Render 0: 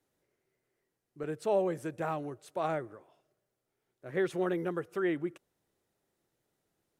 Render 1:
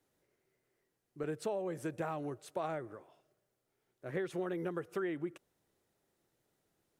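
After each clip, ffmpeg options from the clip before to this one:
-af "acompressor=threshold=-34dB:ratio=12,volume=1dB"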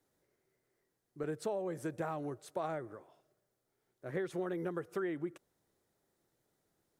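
-af "equalizer=f=2.7k:w=2.8:g=-5"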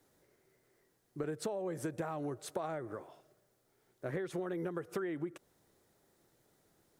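-af "acompressor=threshold=-43dB:ratio=6,volume=8dB"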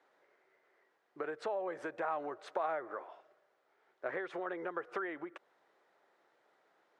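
-af "highpass=710,lowpass=2.1k,volume=7.5dB"

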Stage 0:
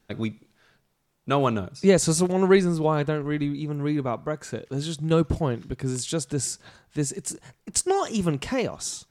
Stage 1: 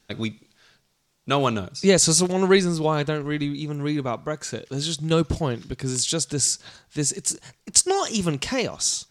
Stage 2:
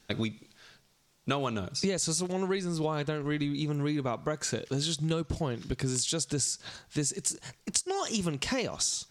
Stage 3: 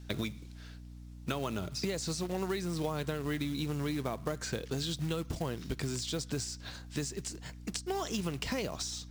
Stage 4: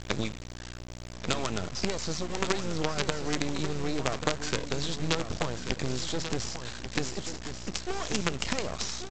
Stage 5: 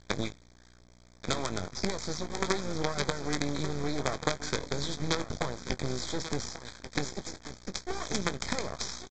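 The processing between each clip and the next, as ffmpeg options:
-af "equalizer=f=5.2k:w=0.58:g=10"
-af "acompressor=threshold=-28dB:ratio=12,volume=1.5dB"
-filter_complex "[0:a]acrossover=split=560|5000[a][b][c];[a]acompressor=threshold=-31dB:ratio=4[d];[b]acompressor=threshold=-35dB:ratio=4[e];[c]acompressor=threshold=-46dB:ratio=4[f];[d][e][f]amix=inputs=3:normalize=0,acrusher=bits=4:mode=log:mix=0:aa=0.000001,aeval=exprs='val(0)+0.00562*(sin(2*PI*60*n/s)+sin(2*PI*2*60*n/s)/2+sin(2*PI*3*60*n/s)/3+sin(2*PI*4*60*n/s)/4+sin(2*PI*5*60*n/s)/5)':c=same,volume=-1.5dB"
-af "aresample=16000,acrusher=bits=5:dc=4:mix=0:aa=0.000001,aresample=44100,aecho=1:1:1138:0.335,volume=7dB"
-filter_complex "[0:a]aresample=16000,aeval=exprs='sgn(val(0))*max(abs(val(0))-0.015,0)':c=same,aresample=44100,asuperstop=centerf=2800:order=4:qfactor=3.6,asplit=2[a][b];[b]adelay=21,volume=-12dB[c];[a][c]amix=inputs=2:normalize=0"

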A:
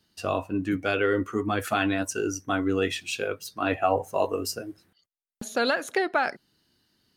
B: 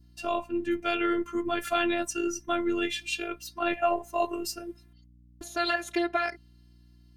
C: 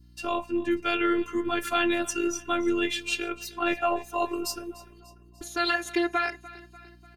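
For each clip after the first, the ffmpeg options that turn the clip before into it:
-af "afftfilt=real='hypot(re,im)*cos(PI*b)':imag='0':win_size=512:overlap=0.75,aeval=exprs='val(0)+0.00178*(sin(2*PI*60*n/s)+sin(2*PI*2*60*n/s)/2+sin(2*PI*3*60*n/s)/3+sin(2*PI*4*60*n/s)/4+sin(2*PI*5*60*n/s)/5)':c=same,adynamicequalizer=threshold=0.00501:dfrequency=2700:dqfactor=1.2:tfrequency=2700:tqfactor=1.2:attack=5:release=100:ratio=0.375:range=2.5:mode=boostabove:tftype=bell"
-af "asuperstop=centerf=650:order=4:qfactor=7.7,aecho=1:1:295|590|885|1180:0.112|0.0595|0.0315|0.0167,volume=2.5dB"

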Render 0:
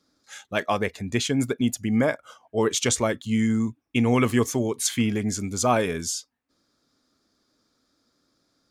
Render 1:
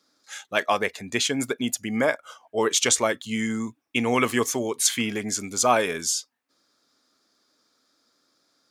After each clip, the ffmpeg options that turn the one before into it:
-af "highpass=f=590:p=1,volume=4dB"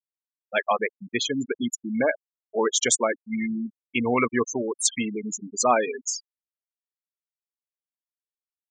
-af "afftfilt=real='re*gte(hypot(re,im),0.126)':imag='im*gte(hypot(re,im),0.126)':win_size=1024:overlap=0.75"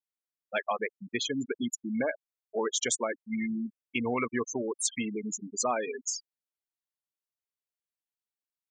-af "acompressor=threshold=-24dB:ratio=2.5,volume=-3.5dB"

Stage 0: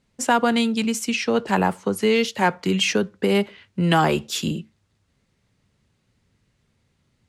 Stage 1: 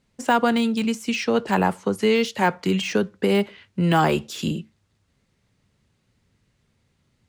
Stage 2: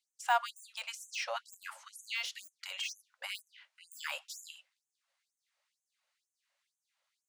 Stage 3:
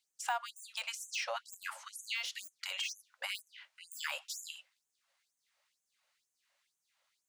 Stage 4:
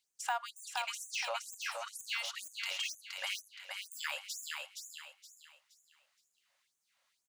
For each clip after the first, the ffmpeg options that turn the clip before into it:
-af "deesser=0.65"
-af "afftfilt=real='re*gte(b*sr/1024,500*pow(6200/500,0.5+0.5*sin(2*PI*2.1*pts/sr)))':imag='im*gte(b*sr/1024,500*pow(6200/500,0.5+0.5*sin(2*PI*2.1*pts/sr)))':win_size=1024:overlap=0.75,volume=-8dB"
-af "acompressor=threshold=-39dB:ratio=3,volume=4dB"
-af "aecho=1:1:470|940|1410|1880:0.596|0.191|0.061|0.0195"

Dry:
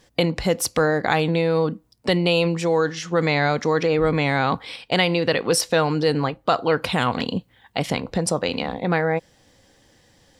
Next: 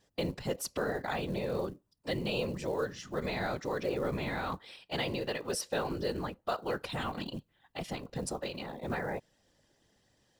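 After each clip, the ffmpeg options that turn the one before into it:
-af "afftfilt=real='hypot(re,im)*cos(2*PI*random(0))':imag='hypot(re,im)*sin(2*PI*random(1))':win_size=512:overlap=0.75,acrusher=bits=7:mode=log:mix=0:aa=0.000001,bandreject=f=2.2k:w=14,volume=-8dB"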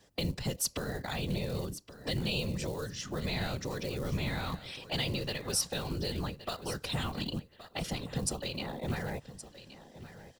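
-filter_complex "[0:a]acrossover=split=170|3000[a][b][c];[b]acompressor=threshold=-44dB:ratio=10[d];[a][d][c]amix=inputs=3:normalize=0,aecho=1:1:1121|2242:0.188|0.0396,volume=7dB"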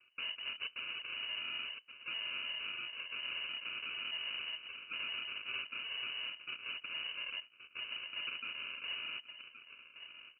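-af "acrusher=samples=40:mix=1:aa=0.000001,asoftclip=type=tanh:threshold=-33dB,lowpass=f=2.6k:t=q:w=0.5098,lowpass=f=2.6k:t=q:w=0.6013,lowpass=f=2.6k:t=q:w=0.9,lowpass=f=2.6k:t=q:w=2.563,afreqshift=-3000,volume=-3.5dB"

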